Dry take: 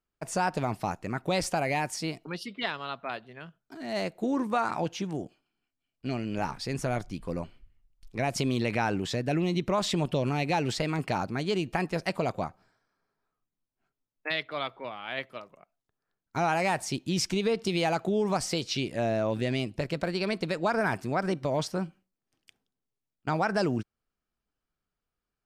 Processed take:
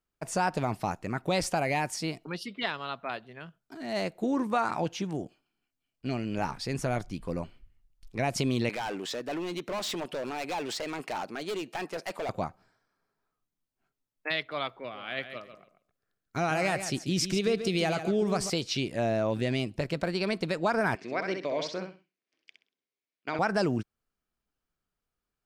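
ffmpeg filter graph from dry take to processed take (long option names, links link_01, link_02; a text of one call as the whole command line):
ffmpeg -i in.wav -filter_complex "[0:a]asettb=1/sr,asplit=3[link_01][link_02][link_03];[link_01]atrim=end=8.694[link_04];[link_02]atrim=start=8.69:end=12.29,asetpts=PTS-STARTPTS,afade=type=in:duration=0.004:curve=qsin,afade=type=out:start_time=3.596:duration=0.004:curve=qsin,highpass=340,asoftclip=type=hard:threshold=-30dB[link_05];[link_03]atrim=start=12.286[link_06];[link_04][link_05]acrossfade=duration=0.004:curve1=hsin:curve2=qsin[link_07];[link_07][link_06]acrossfade=duration=0.004:curve1=qsin:curve2=hsin,asettb=1/sr,asplit=3[link_08][link_09][link_10];[link_08]atrim=end=14.794[link_11];[link_09]atrim=start=14.79:end=18.5,asetpts=PTS-STARTPTS,afade=type=in:duration=0.004:curve=qsin,afade=type=out:start_time=3.706:duration=0.004:curve=qsin,equalizer=frequency=900:width=5.1:gain=-11.5,aecho=1:1:139|278|417:0.316|0.0569|0.0102,atrim=end_sample=163611[link_12];[link_10]atrim=start=18.496[link_13];[link_11][link_12]acrossfade=duration=0.004:curve1=hsin:curve2=qsin[link_14];[link_14][link_13]acrossfade=duration=0.004:curve1=qsin:curve2=hsin,asettb=1/sr,asplit=3[link_15][link_16][link_17];[link_15]atrim=end=20.954[link_18];[link_16]atrim=start=20.95:end=23.39,asetpts=PTS-STARTPTS,afade=type=in:duration=0.004:curve=qsin,afade=type=out:start_time=2.436:duration=0.004:curve=qsin,highpass=360,equalizer=frequency=840:width_type=q:width=4:gain=-9,equalizer=frequency=1300:width_type=q:width=4:gain=-5,equalizer=frequency=2200:width_type=q:width=4:gain=7,lowpass=frequency=5600:width=0.5412,lowpass=frequency=5600:width=1.3066,aecho=1:1:64|128|192:0.501|0.12|0.0289,atrim=end_sample=107604[link_19];[link_17]atrim=start=23.386[link_20];[link_18][link_19]acrossfade=duration=0.004:curve1=hsin:curve2=qsin[link_21];[link_21][link_20]acrossfade=duration=0.004:curve1=qsin:curve2=hsin" out.wav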